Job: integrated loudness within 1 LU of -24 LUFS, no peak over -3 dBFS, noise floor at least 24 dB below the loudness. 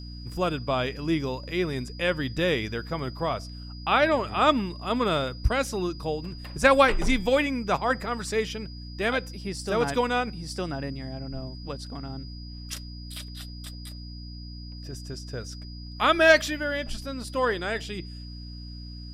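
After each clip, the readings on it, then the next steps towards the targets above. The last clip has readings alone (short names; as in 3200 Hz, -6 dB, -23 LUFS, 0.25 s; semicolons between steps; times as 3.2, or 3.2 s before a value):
hum 60 Hz; harmonics up to 300 Hz; hum level -37 dBFS; steady tone 4900 Hz; tone level -46 dBFS; loudness -26.5 LUFS; peak -6.5 dBFS; loudness target -24.0 LUFS
-> notches 60/120/180/240/300 Hz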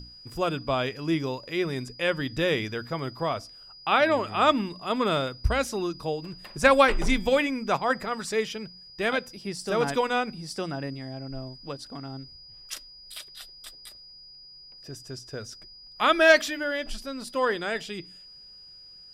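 hum none; steady tone 4900 Hz; tone level -46 dBFS
-> notch 4900 Hz, Q 30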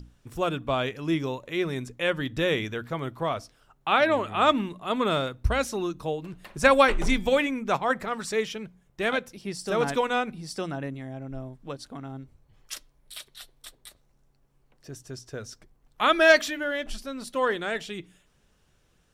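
steady tone none; loudness -26.0 LUFS; peak -6.0 dBFS; loudness target -24.0 LUFS
-> gain +2 dB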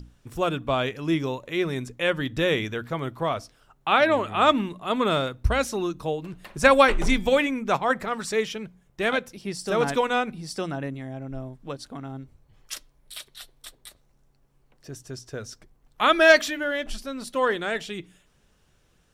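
loudness -24.0 LUFS; peak -4.0 dBFS; noise floor -64 dBFS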